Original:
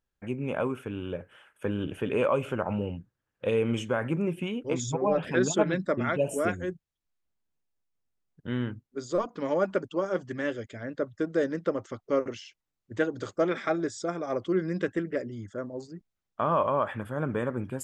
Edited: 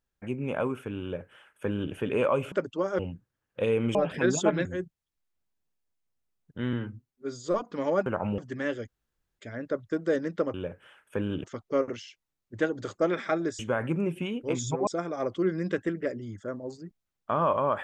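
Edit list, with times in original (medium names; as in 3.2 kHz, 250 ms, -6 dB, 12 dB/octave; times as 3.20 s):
1.03–1.93 s: copy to 11.82 s
2.52–2.84 s: swap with 9.70–10.17 s
3.80–5.08 s: move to 13.97 s
5.78–6.54 s: delete
8.62–9.12 s: stretch 1.5×
10.67 s: insert room tone 0.51 s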